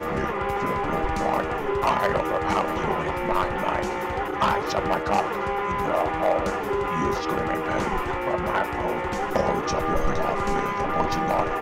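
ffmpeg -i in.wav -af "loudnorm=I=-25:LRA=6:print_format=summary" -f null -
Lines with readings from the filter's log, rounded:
Input Integrated:    -25.0 LUFS
Input True Peak:     -13.4 dBTP
Input LRA:             0.7 LU
Input Threshold:     -35.0 LUFS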